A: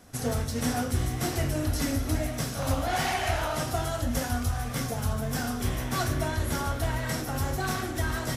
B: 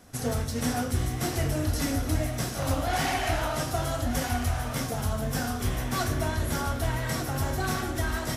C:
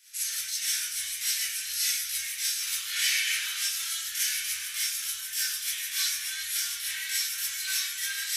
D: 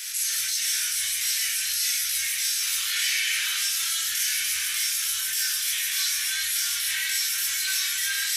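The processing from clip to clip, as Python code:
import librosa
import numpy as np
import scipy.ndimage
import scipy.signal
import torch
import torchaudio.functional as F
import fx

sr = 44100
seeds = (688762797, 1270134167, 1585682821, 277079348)

y1 = x + 10.0 ** (-9.5 / 20.0) * np.pad(x, (int(1199 * sr / 1000.0), 0))[:len(x)]
y2 = scipy.signal.sosfilt(scipy.signal.cheby2(4, 50, 820.0, 'highpass', fs=sr, output='sos'), y1)
y2 = fx.rev_gated(y2, sr, seeds[0], gate_ms=80, shape='rising', drr_db=-7.0)
y3 = fx.env_flatten(y2, sr, amount_pct=70)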